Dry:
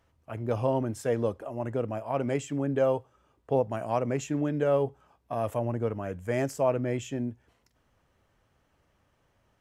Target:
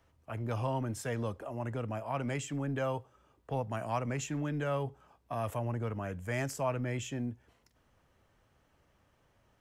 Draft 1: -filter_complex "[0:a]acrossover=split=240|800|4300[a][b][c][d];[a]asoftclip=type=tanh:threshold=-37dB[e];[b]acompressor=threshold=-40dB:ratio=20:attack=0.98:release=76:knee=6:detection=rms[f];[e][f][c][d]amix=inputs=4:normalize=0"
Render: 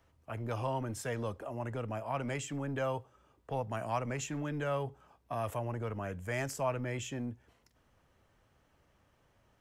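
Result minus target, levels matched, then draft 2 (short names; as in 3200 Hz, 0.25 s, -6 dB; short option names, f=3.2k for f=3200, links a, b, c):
soft clip: distortion +8 dB
-filter_complex "[0:a]acrossover=split=240|800|4300[a][b][c][d];[a]asoftclip=type=tanh:threshold=-30.5dB[e];[b]acompressor=threshold=-40dB:ratio=20:attack=0.98:release=76:knee=6:detection=rms[f];[e][f][c][d]amix=inputs=4:normalize=0"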